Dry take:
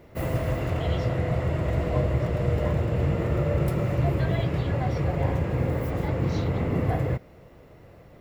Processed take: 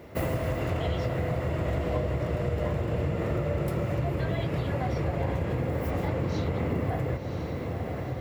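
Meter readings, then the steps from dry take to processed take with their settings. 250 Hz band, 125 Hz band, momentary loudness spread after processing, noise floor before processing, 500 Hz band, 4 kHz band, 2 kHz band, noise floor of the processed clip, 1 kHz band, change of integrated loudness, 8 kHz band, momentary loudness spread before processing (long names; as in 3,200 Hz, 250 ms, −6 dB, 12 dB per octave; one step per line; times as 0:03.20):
−2.5 dB, −4.0 dB, 3 LU, −51 dBFS, −1.5 dB, −1.0 dB, −1.5 dB, −34 dBFS, −1.5 dB, −3.5 dB, can't be measured, 3 LU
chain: high-pass filter 58 Hz
on a send: feedback delay with all-pass diffusion 1,000 ms, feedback 57%, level −12 dB
on the sum: downward compressor 4 to 1, threshold −30 dBFS, peak gain reduction 9.5 dB
parametric band 130 Hz −3 dB 0.74 octaves
level +5 dB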